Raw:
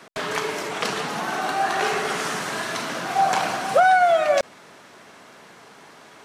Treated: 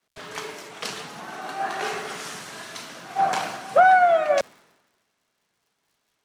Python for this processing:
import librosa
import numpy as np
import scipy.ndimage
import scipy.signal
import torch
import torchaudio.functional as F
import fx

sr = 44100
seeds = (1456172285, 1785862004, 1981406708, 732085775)

y = fx.dmg_crackle(x, sr, seeds[0], per_s=180.0, level_db=-36.0)
y = fx.band_widen(y, sr, depth_pct=100)
y = y * 10.0 ** (-6.0 / 20.0)